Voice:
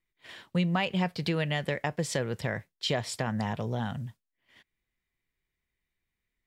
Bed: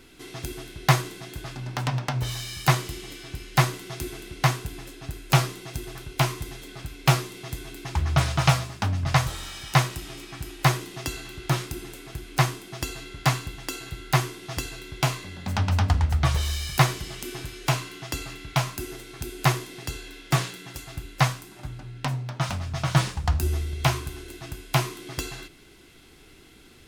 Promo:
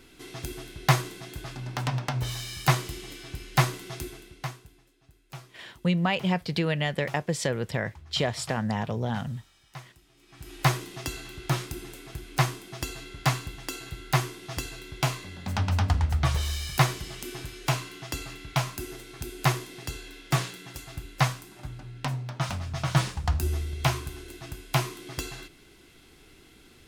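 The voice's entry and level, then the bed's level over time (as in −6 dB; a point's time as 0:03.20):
5.30 s, +2.5 dB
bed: 0:03.96 −2 dB
0:04.90 −23.5 dB
0:10.13 −23.5 dB
0:10.55 −2.5 dB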